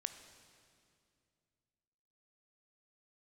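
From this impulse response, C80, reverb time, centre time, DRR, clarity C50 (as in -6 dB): 10.5 dB, 2.4 s, 21 ms, 8.5 dB, 9.5 dB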